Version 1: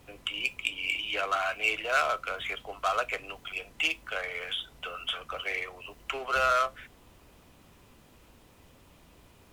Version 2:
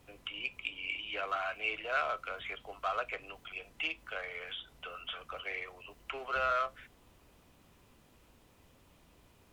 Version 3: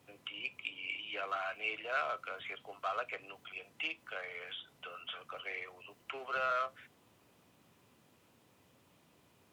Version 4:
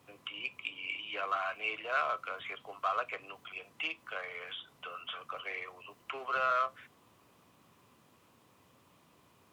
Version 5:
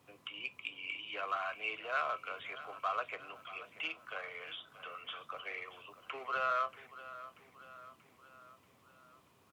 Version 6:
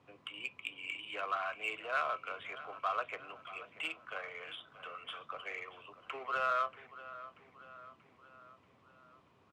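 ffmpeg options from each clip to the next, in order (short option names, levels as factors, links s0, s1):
-filter_complex "[0:a]acrossover=split=3800[s0][s1];[s1]acompressor=threshold=0.00141:ratio=4:attack=1:release=60[s2];[s0][s2]amix=inputs=2:normalize=0,volume=0.501"
-af "highpass=f=99:w=0.5412,highpass=f=99:w=1.3066,volume=0.75"
-af "equalizer=f=1100:t=o:w=0.35:g=7.5,volume=1.19"
-af "aecho=1:1:634|1268|1902|2536|3170:0.168|0.0923|0.0508|0.0279|0.0154,volume=0.708"
-af "adynamicsmooth=sensitivity=7.5:basefreq=4000,volume=1.12"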